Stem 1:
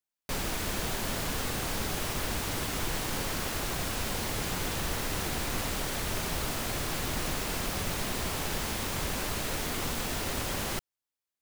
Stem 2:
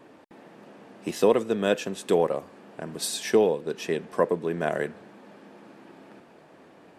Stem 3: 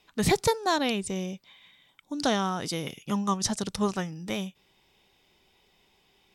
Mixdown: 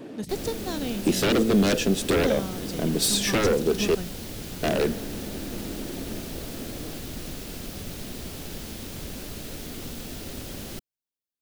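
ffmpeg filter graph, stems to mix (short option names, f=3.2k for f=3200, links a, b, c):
-filter_complex "[0:a]volume=-3dB[a];[1:a]aeval=exprs='0.398*sin(PI/2*5.62*val(0)/0.398)':c=same,volume=-7.5dB,asplit=3[b][c][d];[b]atrim=end=3.95,asetpts=PTS-STARTPTS,afade=t=out:st=3.946:d=0.004:c=hsin[e];[c]atrim=start=3.95:end=4.63,asetpts=PTS-STARTPTS,volume=0[f];[d]atrim=start=4.63,asetpts=PTS-STARTPTS,afade=t=in:d=0.004:c=hsin[g];[e][f][g]concat=n=3:v=0:a=1,asplit=2[h][i];[2:a]volume=-5dB[j];[i]apad=whole_len=279778[k];[j][k]sidechaingate=range=-16dB:threshold=-41dB:ratio=16:detection=peak[l];[a][h][l]amix=inputs=3:normalize=0,equalizer=f=250:t=o:w=1:g=4,equalizer=f=1k:t=o:w=1:g=-10,equalizer=f=2k:t=o:w=1:g=-5,equalizer=f=8k:t=o:w=1:g=-3"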